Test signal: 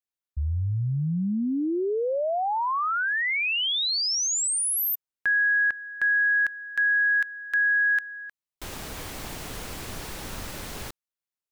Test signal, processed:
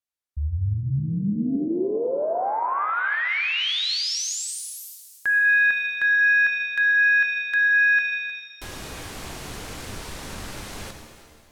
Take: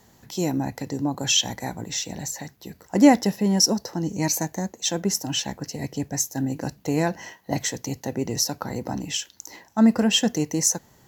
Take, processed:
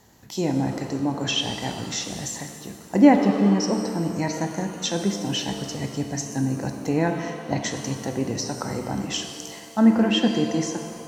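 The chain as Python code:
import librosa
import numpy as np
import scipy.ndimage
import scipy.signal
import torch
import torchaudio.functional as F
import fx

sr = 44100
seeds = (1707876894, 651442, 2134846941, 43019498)

y = fx.env_lowpass_down(x, sr, base_hz=2900.0, full_db=-19.0)
y = fx.rev_shimmer(y, sr, seeds[0], rt60_s=1.9, semitones=7, shimmer_db=-8, drr_db=5.0)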